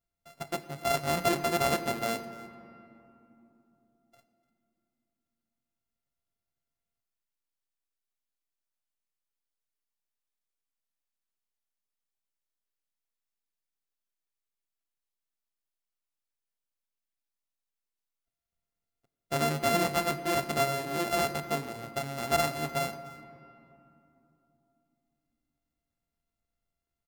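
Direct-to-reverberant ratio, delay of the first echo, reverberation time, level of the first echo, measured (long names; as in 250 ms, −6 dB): 10.5 dB, 296 ms, 2.9 s, −20.5 dB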